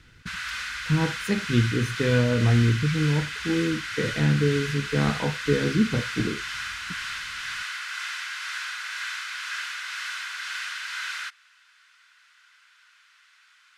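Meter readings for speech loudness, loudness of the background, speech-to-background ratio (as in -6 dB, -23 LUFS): -25.0 LUFS, -31.5 LUFS, 6.5 dB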